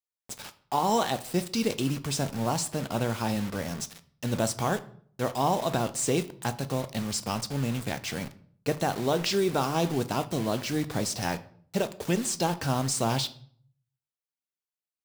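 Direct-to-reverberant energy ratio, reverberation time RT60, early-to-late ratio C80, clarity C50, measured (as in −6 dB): 11.0 dB, 0.55 s, 21.0 dB, 16.5 dB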